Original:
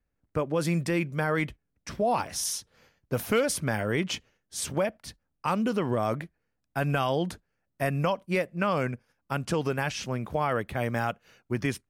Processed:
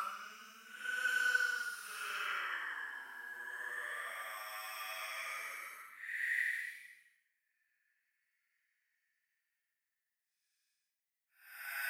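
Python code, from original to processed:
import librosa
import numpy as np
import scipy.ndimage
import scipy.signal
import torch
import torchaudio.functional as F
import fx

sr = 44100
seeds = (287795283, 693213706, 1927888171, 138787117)

y = fx.filter_sweep_highpass(x, sr, from_hz=630.0, to_hz=1900.0, start_s=4.34, end_s=6.08, q=7.0)
y = scipy.signal.lfilter([1.0, -0.8], [1.0], y)
y = fx.paulstretch(y, sr, seeds[0], factor=9.8, window_s=0.1, from_s=5.56)
y = F.gain(torch.from_numpy(y), 1.0).numpy()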